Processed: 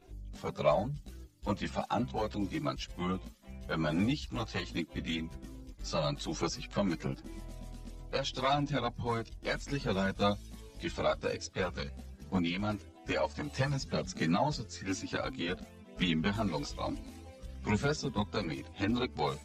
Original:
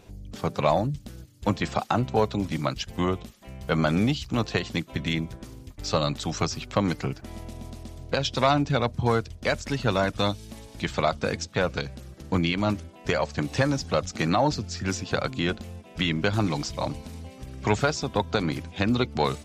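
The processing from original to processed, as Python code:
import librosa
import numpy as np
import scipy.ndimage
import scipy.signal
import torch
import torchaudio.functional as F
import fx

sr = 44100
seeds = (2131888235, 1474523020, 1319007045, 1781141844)

y = fx.spec_quant(x, sr, step_db=15)
y = fx.chorus_voices(y, sr, voices=6, hz=0.13, base_ms=18, depth_ms=3.3, mix_pct=65)
y = y * librosa.db_to_amplitude(-4.5)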